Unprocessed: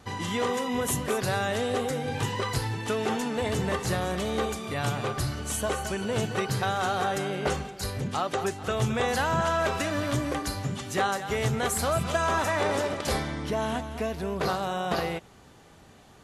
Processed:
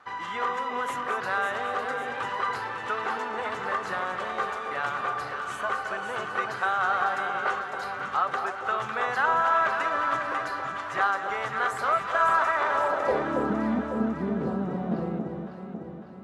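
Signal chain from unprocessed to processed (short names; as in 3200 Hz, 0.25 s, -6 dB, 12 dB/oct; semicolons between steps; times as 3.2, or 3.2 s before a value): band-pass sweep 1300 Hz -> 230 Hz, 12.7–13.47; echo with dull and thin repeats by turns 0.276 s, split 930 Hz, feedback 73%, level -4 dB; gain +7.5 dB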